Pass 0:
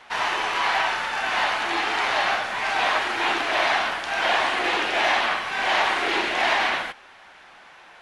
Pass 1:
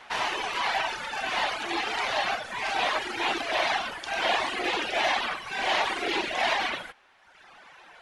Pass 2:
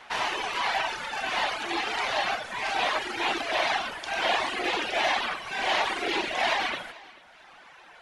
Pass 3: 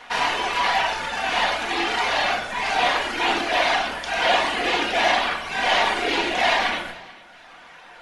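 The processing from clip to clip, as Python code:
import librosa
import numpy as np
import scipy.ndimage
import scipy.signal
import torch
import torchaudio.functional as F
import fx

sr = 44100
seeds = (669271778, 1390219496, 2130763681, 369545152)

y1 = fx.dereverb_blind(x, sr, rt60_s=1.2)
y1 = fx.dynamic_eq(y1, sr, hz=1400.0, q=1.0, threshold_db=-35.0, ratio=4.0, max_db=-5)
y2 = fx.echo_feedback(y1, sr, ms=439, feedback_pct=28, wet_db=-21.0)
y3 = fx.room_shoebox(y2, sr, seeds[0], volume_m3=650.0, walls='furnished', distance_m=1.8)
y3 = y3 * librosa.db_to_amplitude(4.0)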